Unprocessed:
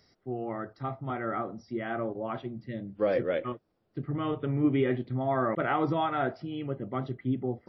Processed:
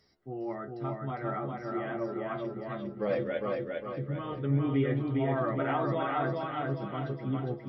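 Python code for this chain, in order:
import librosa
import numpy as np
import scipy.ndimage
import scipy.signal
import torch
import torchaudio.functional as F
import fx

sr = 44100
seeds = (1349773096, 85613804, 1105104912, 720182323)

y = fx.stiff_resonator(x, sr, f0_hz=68.0, decay_s=0.2, stiffness=0.002)
y = fx.echo_feedback(y, sr, ms=406, feedback_pct=44, wet_db=-3.0)
y = y * 10.0 ** (3.0 / 20.0)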